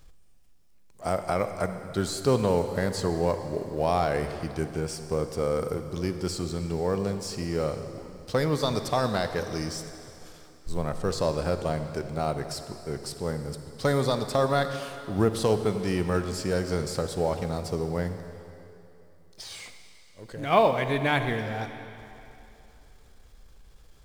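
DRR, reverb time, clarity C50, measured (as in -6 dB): 8.5 dB, 2.9 s, 8.5 dB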